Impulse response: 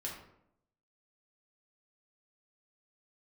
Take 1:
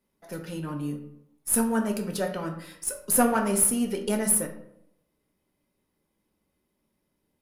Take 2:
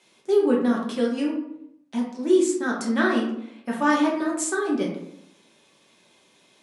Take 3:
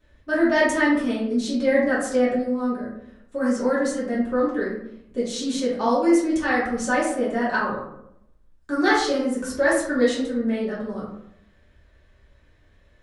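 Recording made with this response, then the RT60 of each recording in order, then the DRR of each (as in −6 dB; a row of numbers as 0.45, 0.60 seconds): 2; 0.75, 0.75, 0.75 seconds; 4.5, −3.5, −8.0 decibels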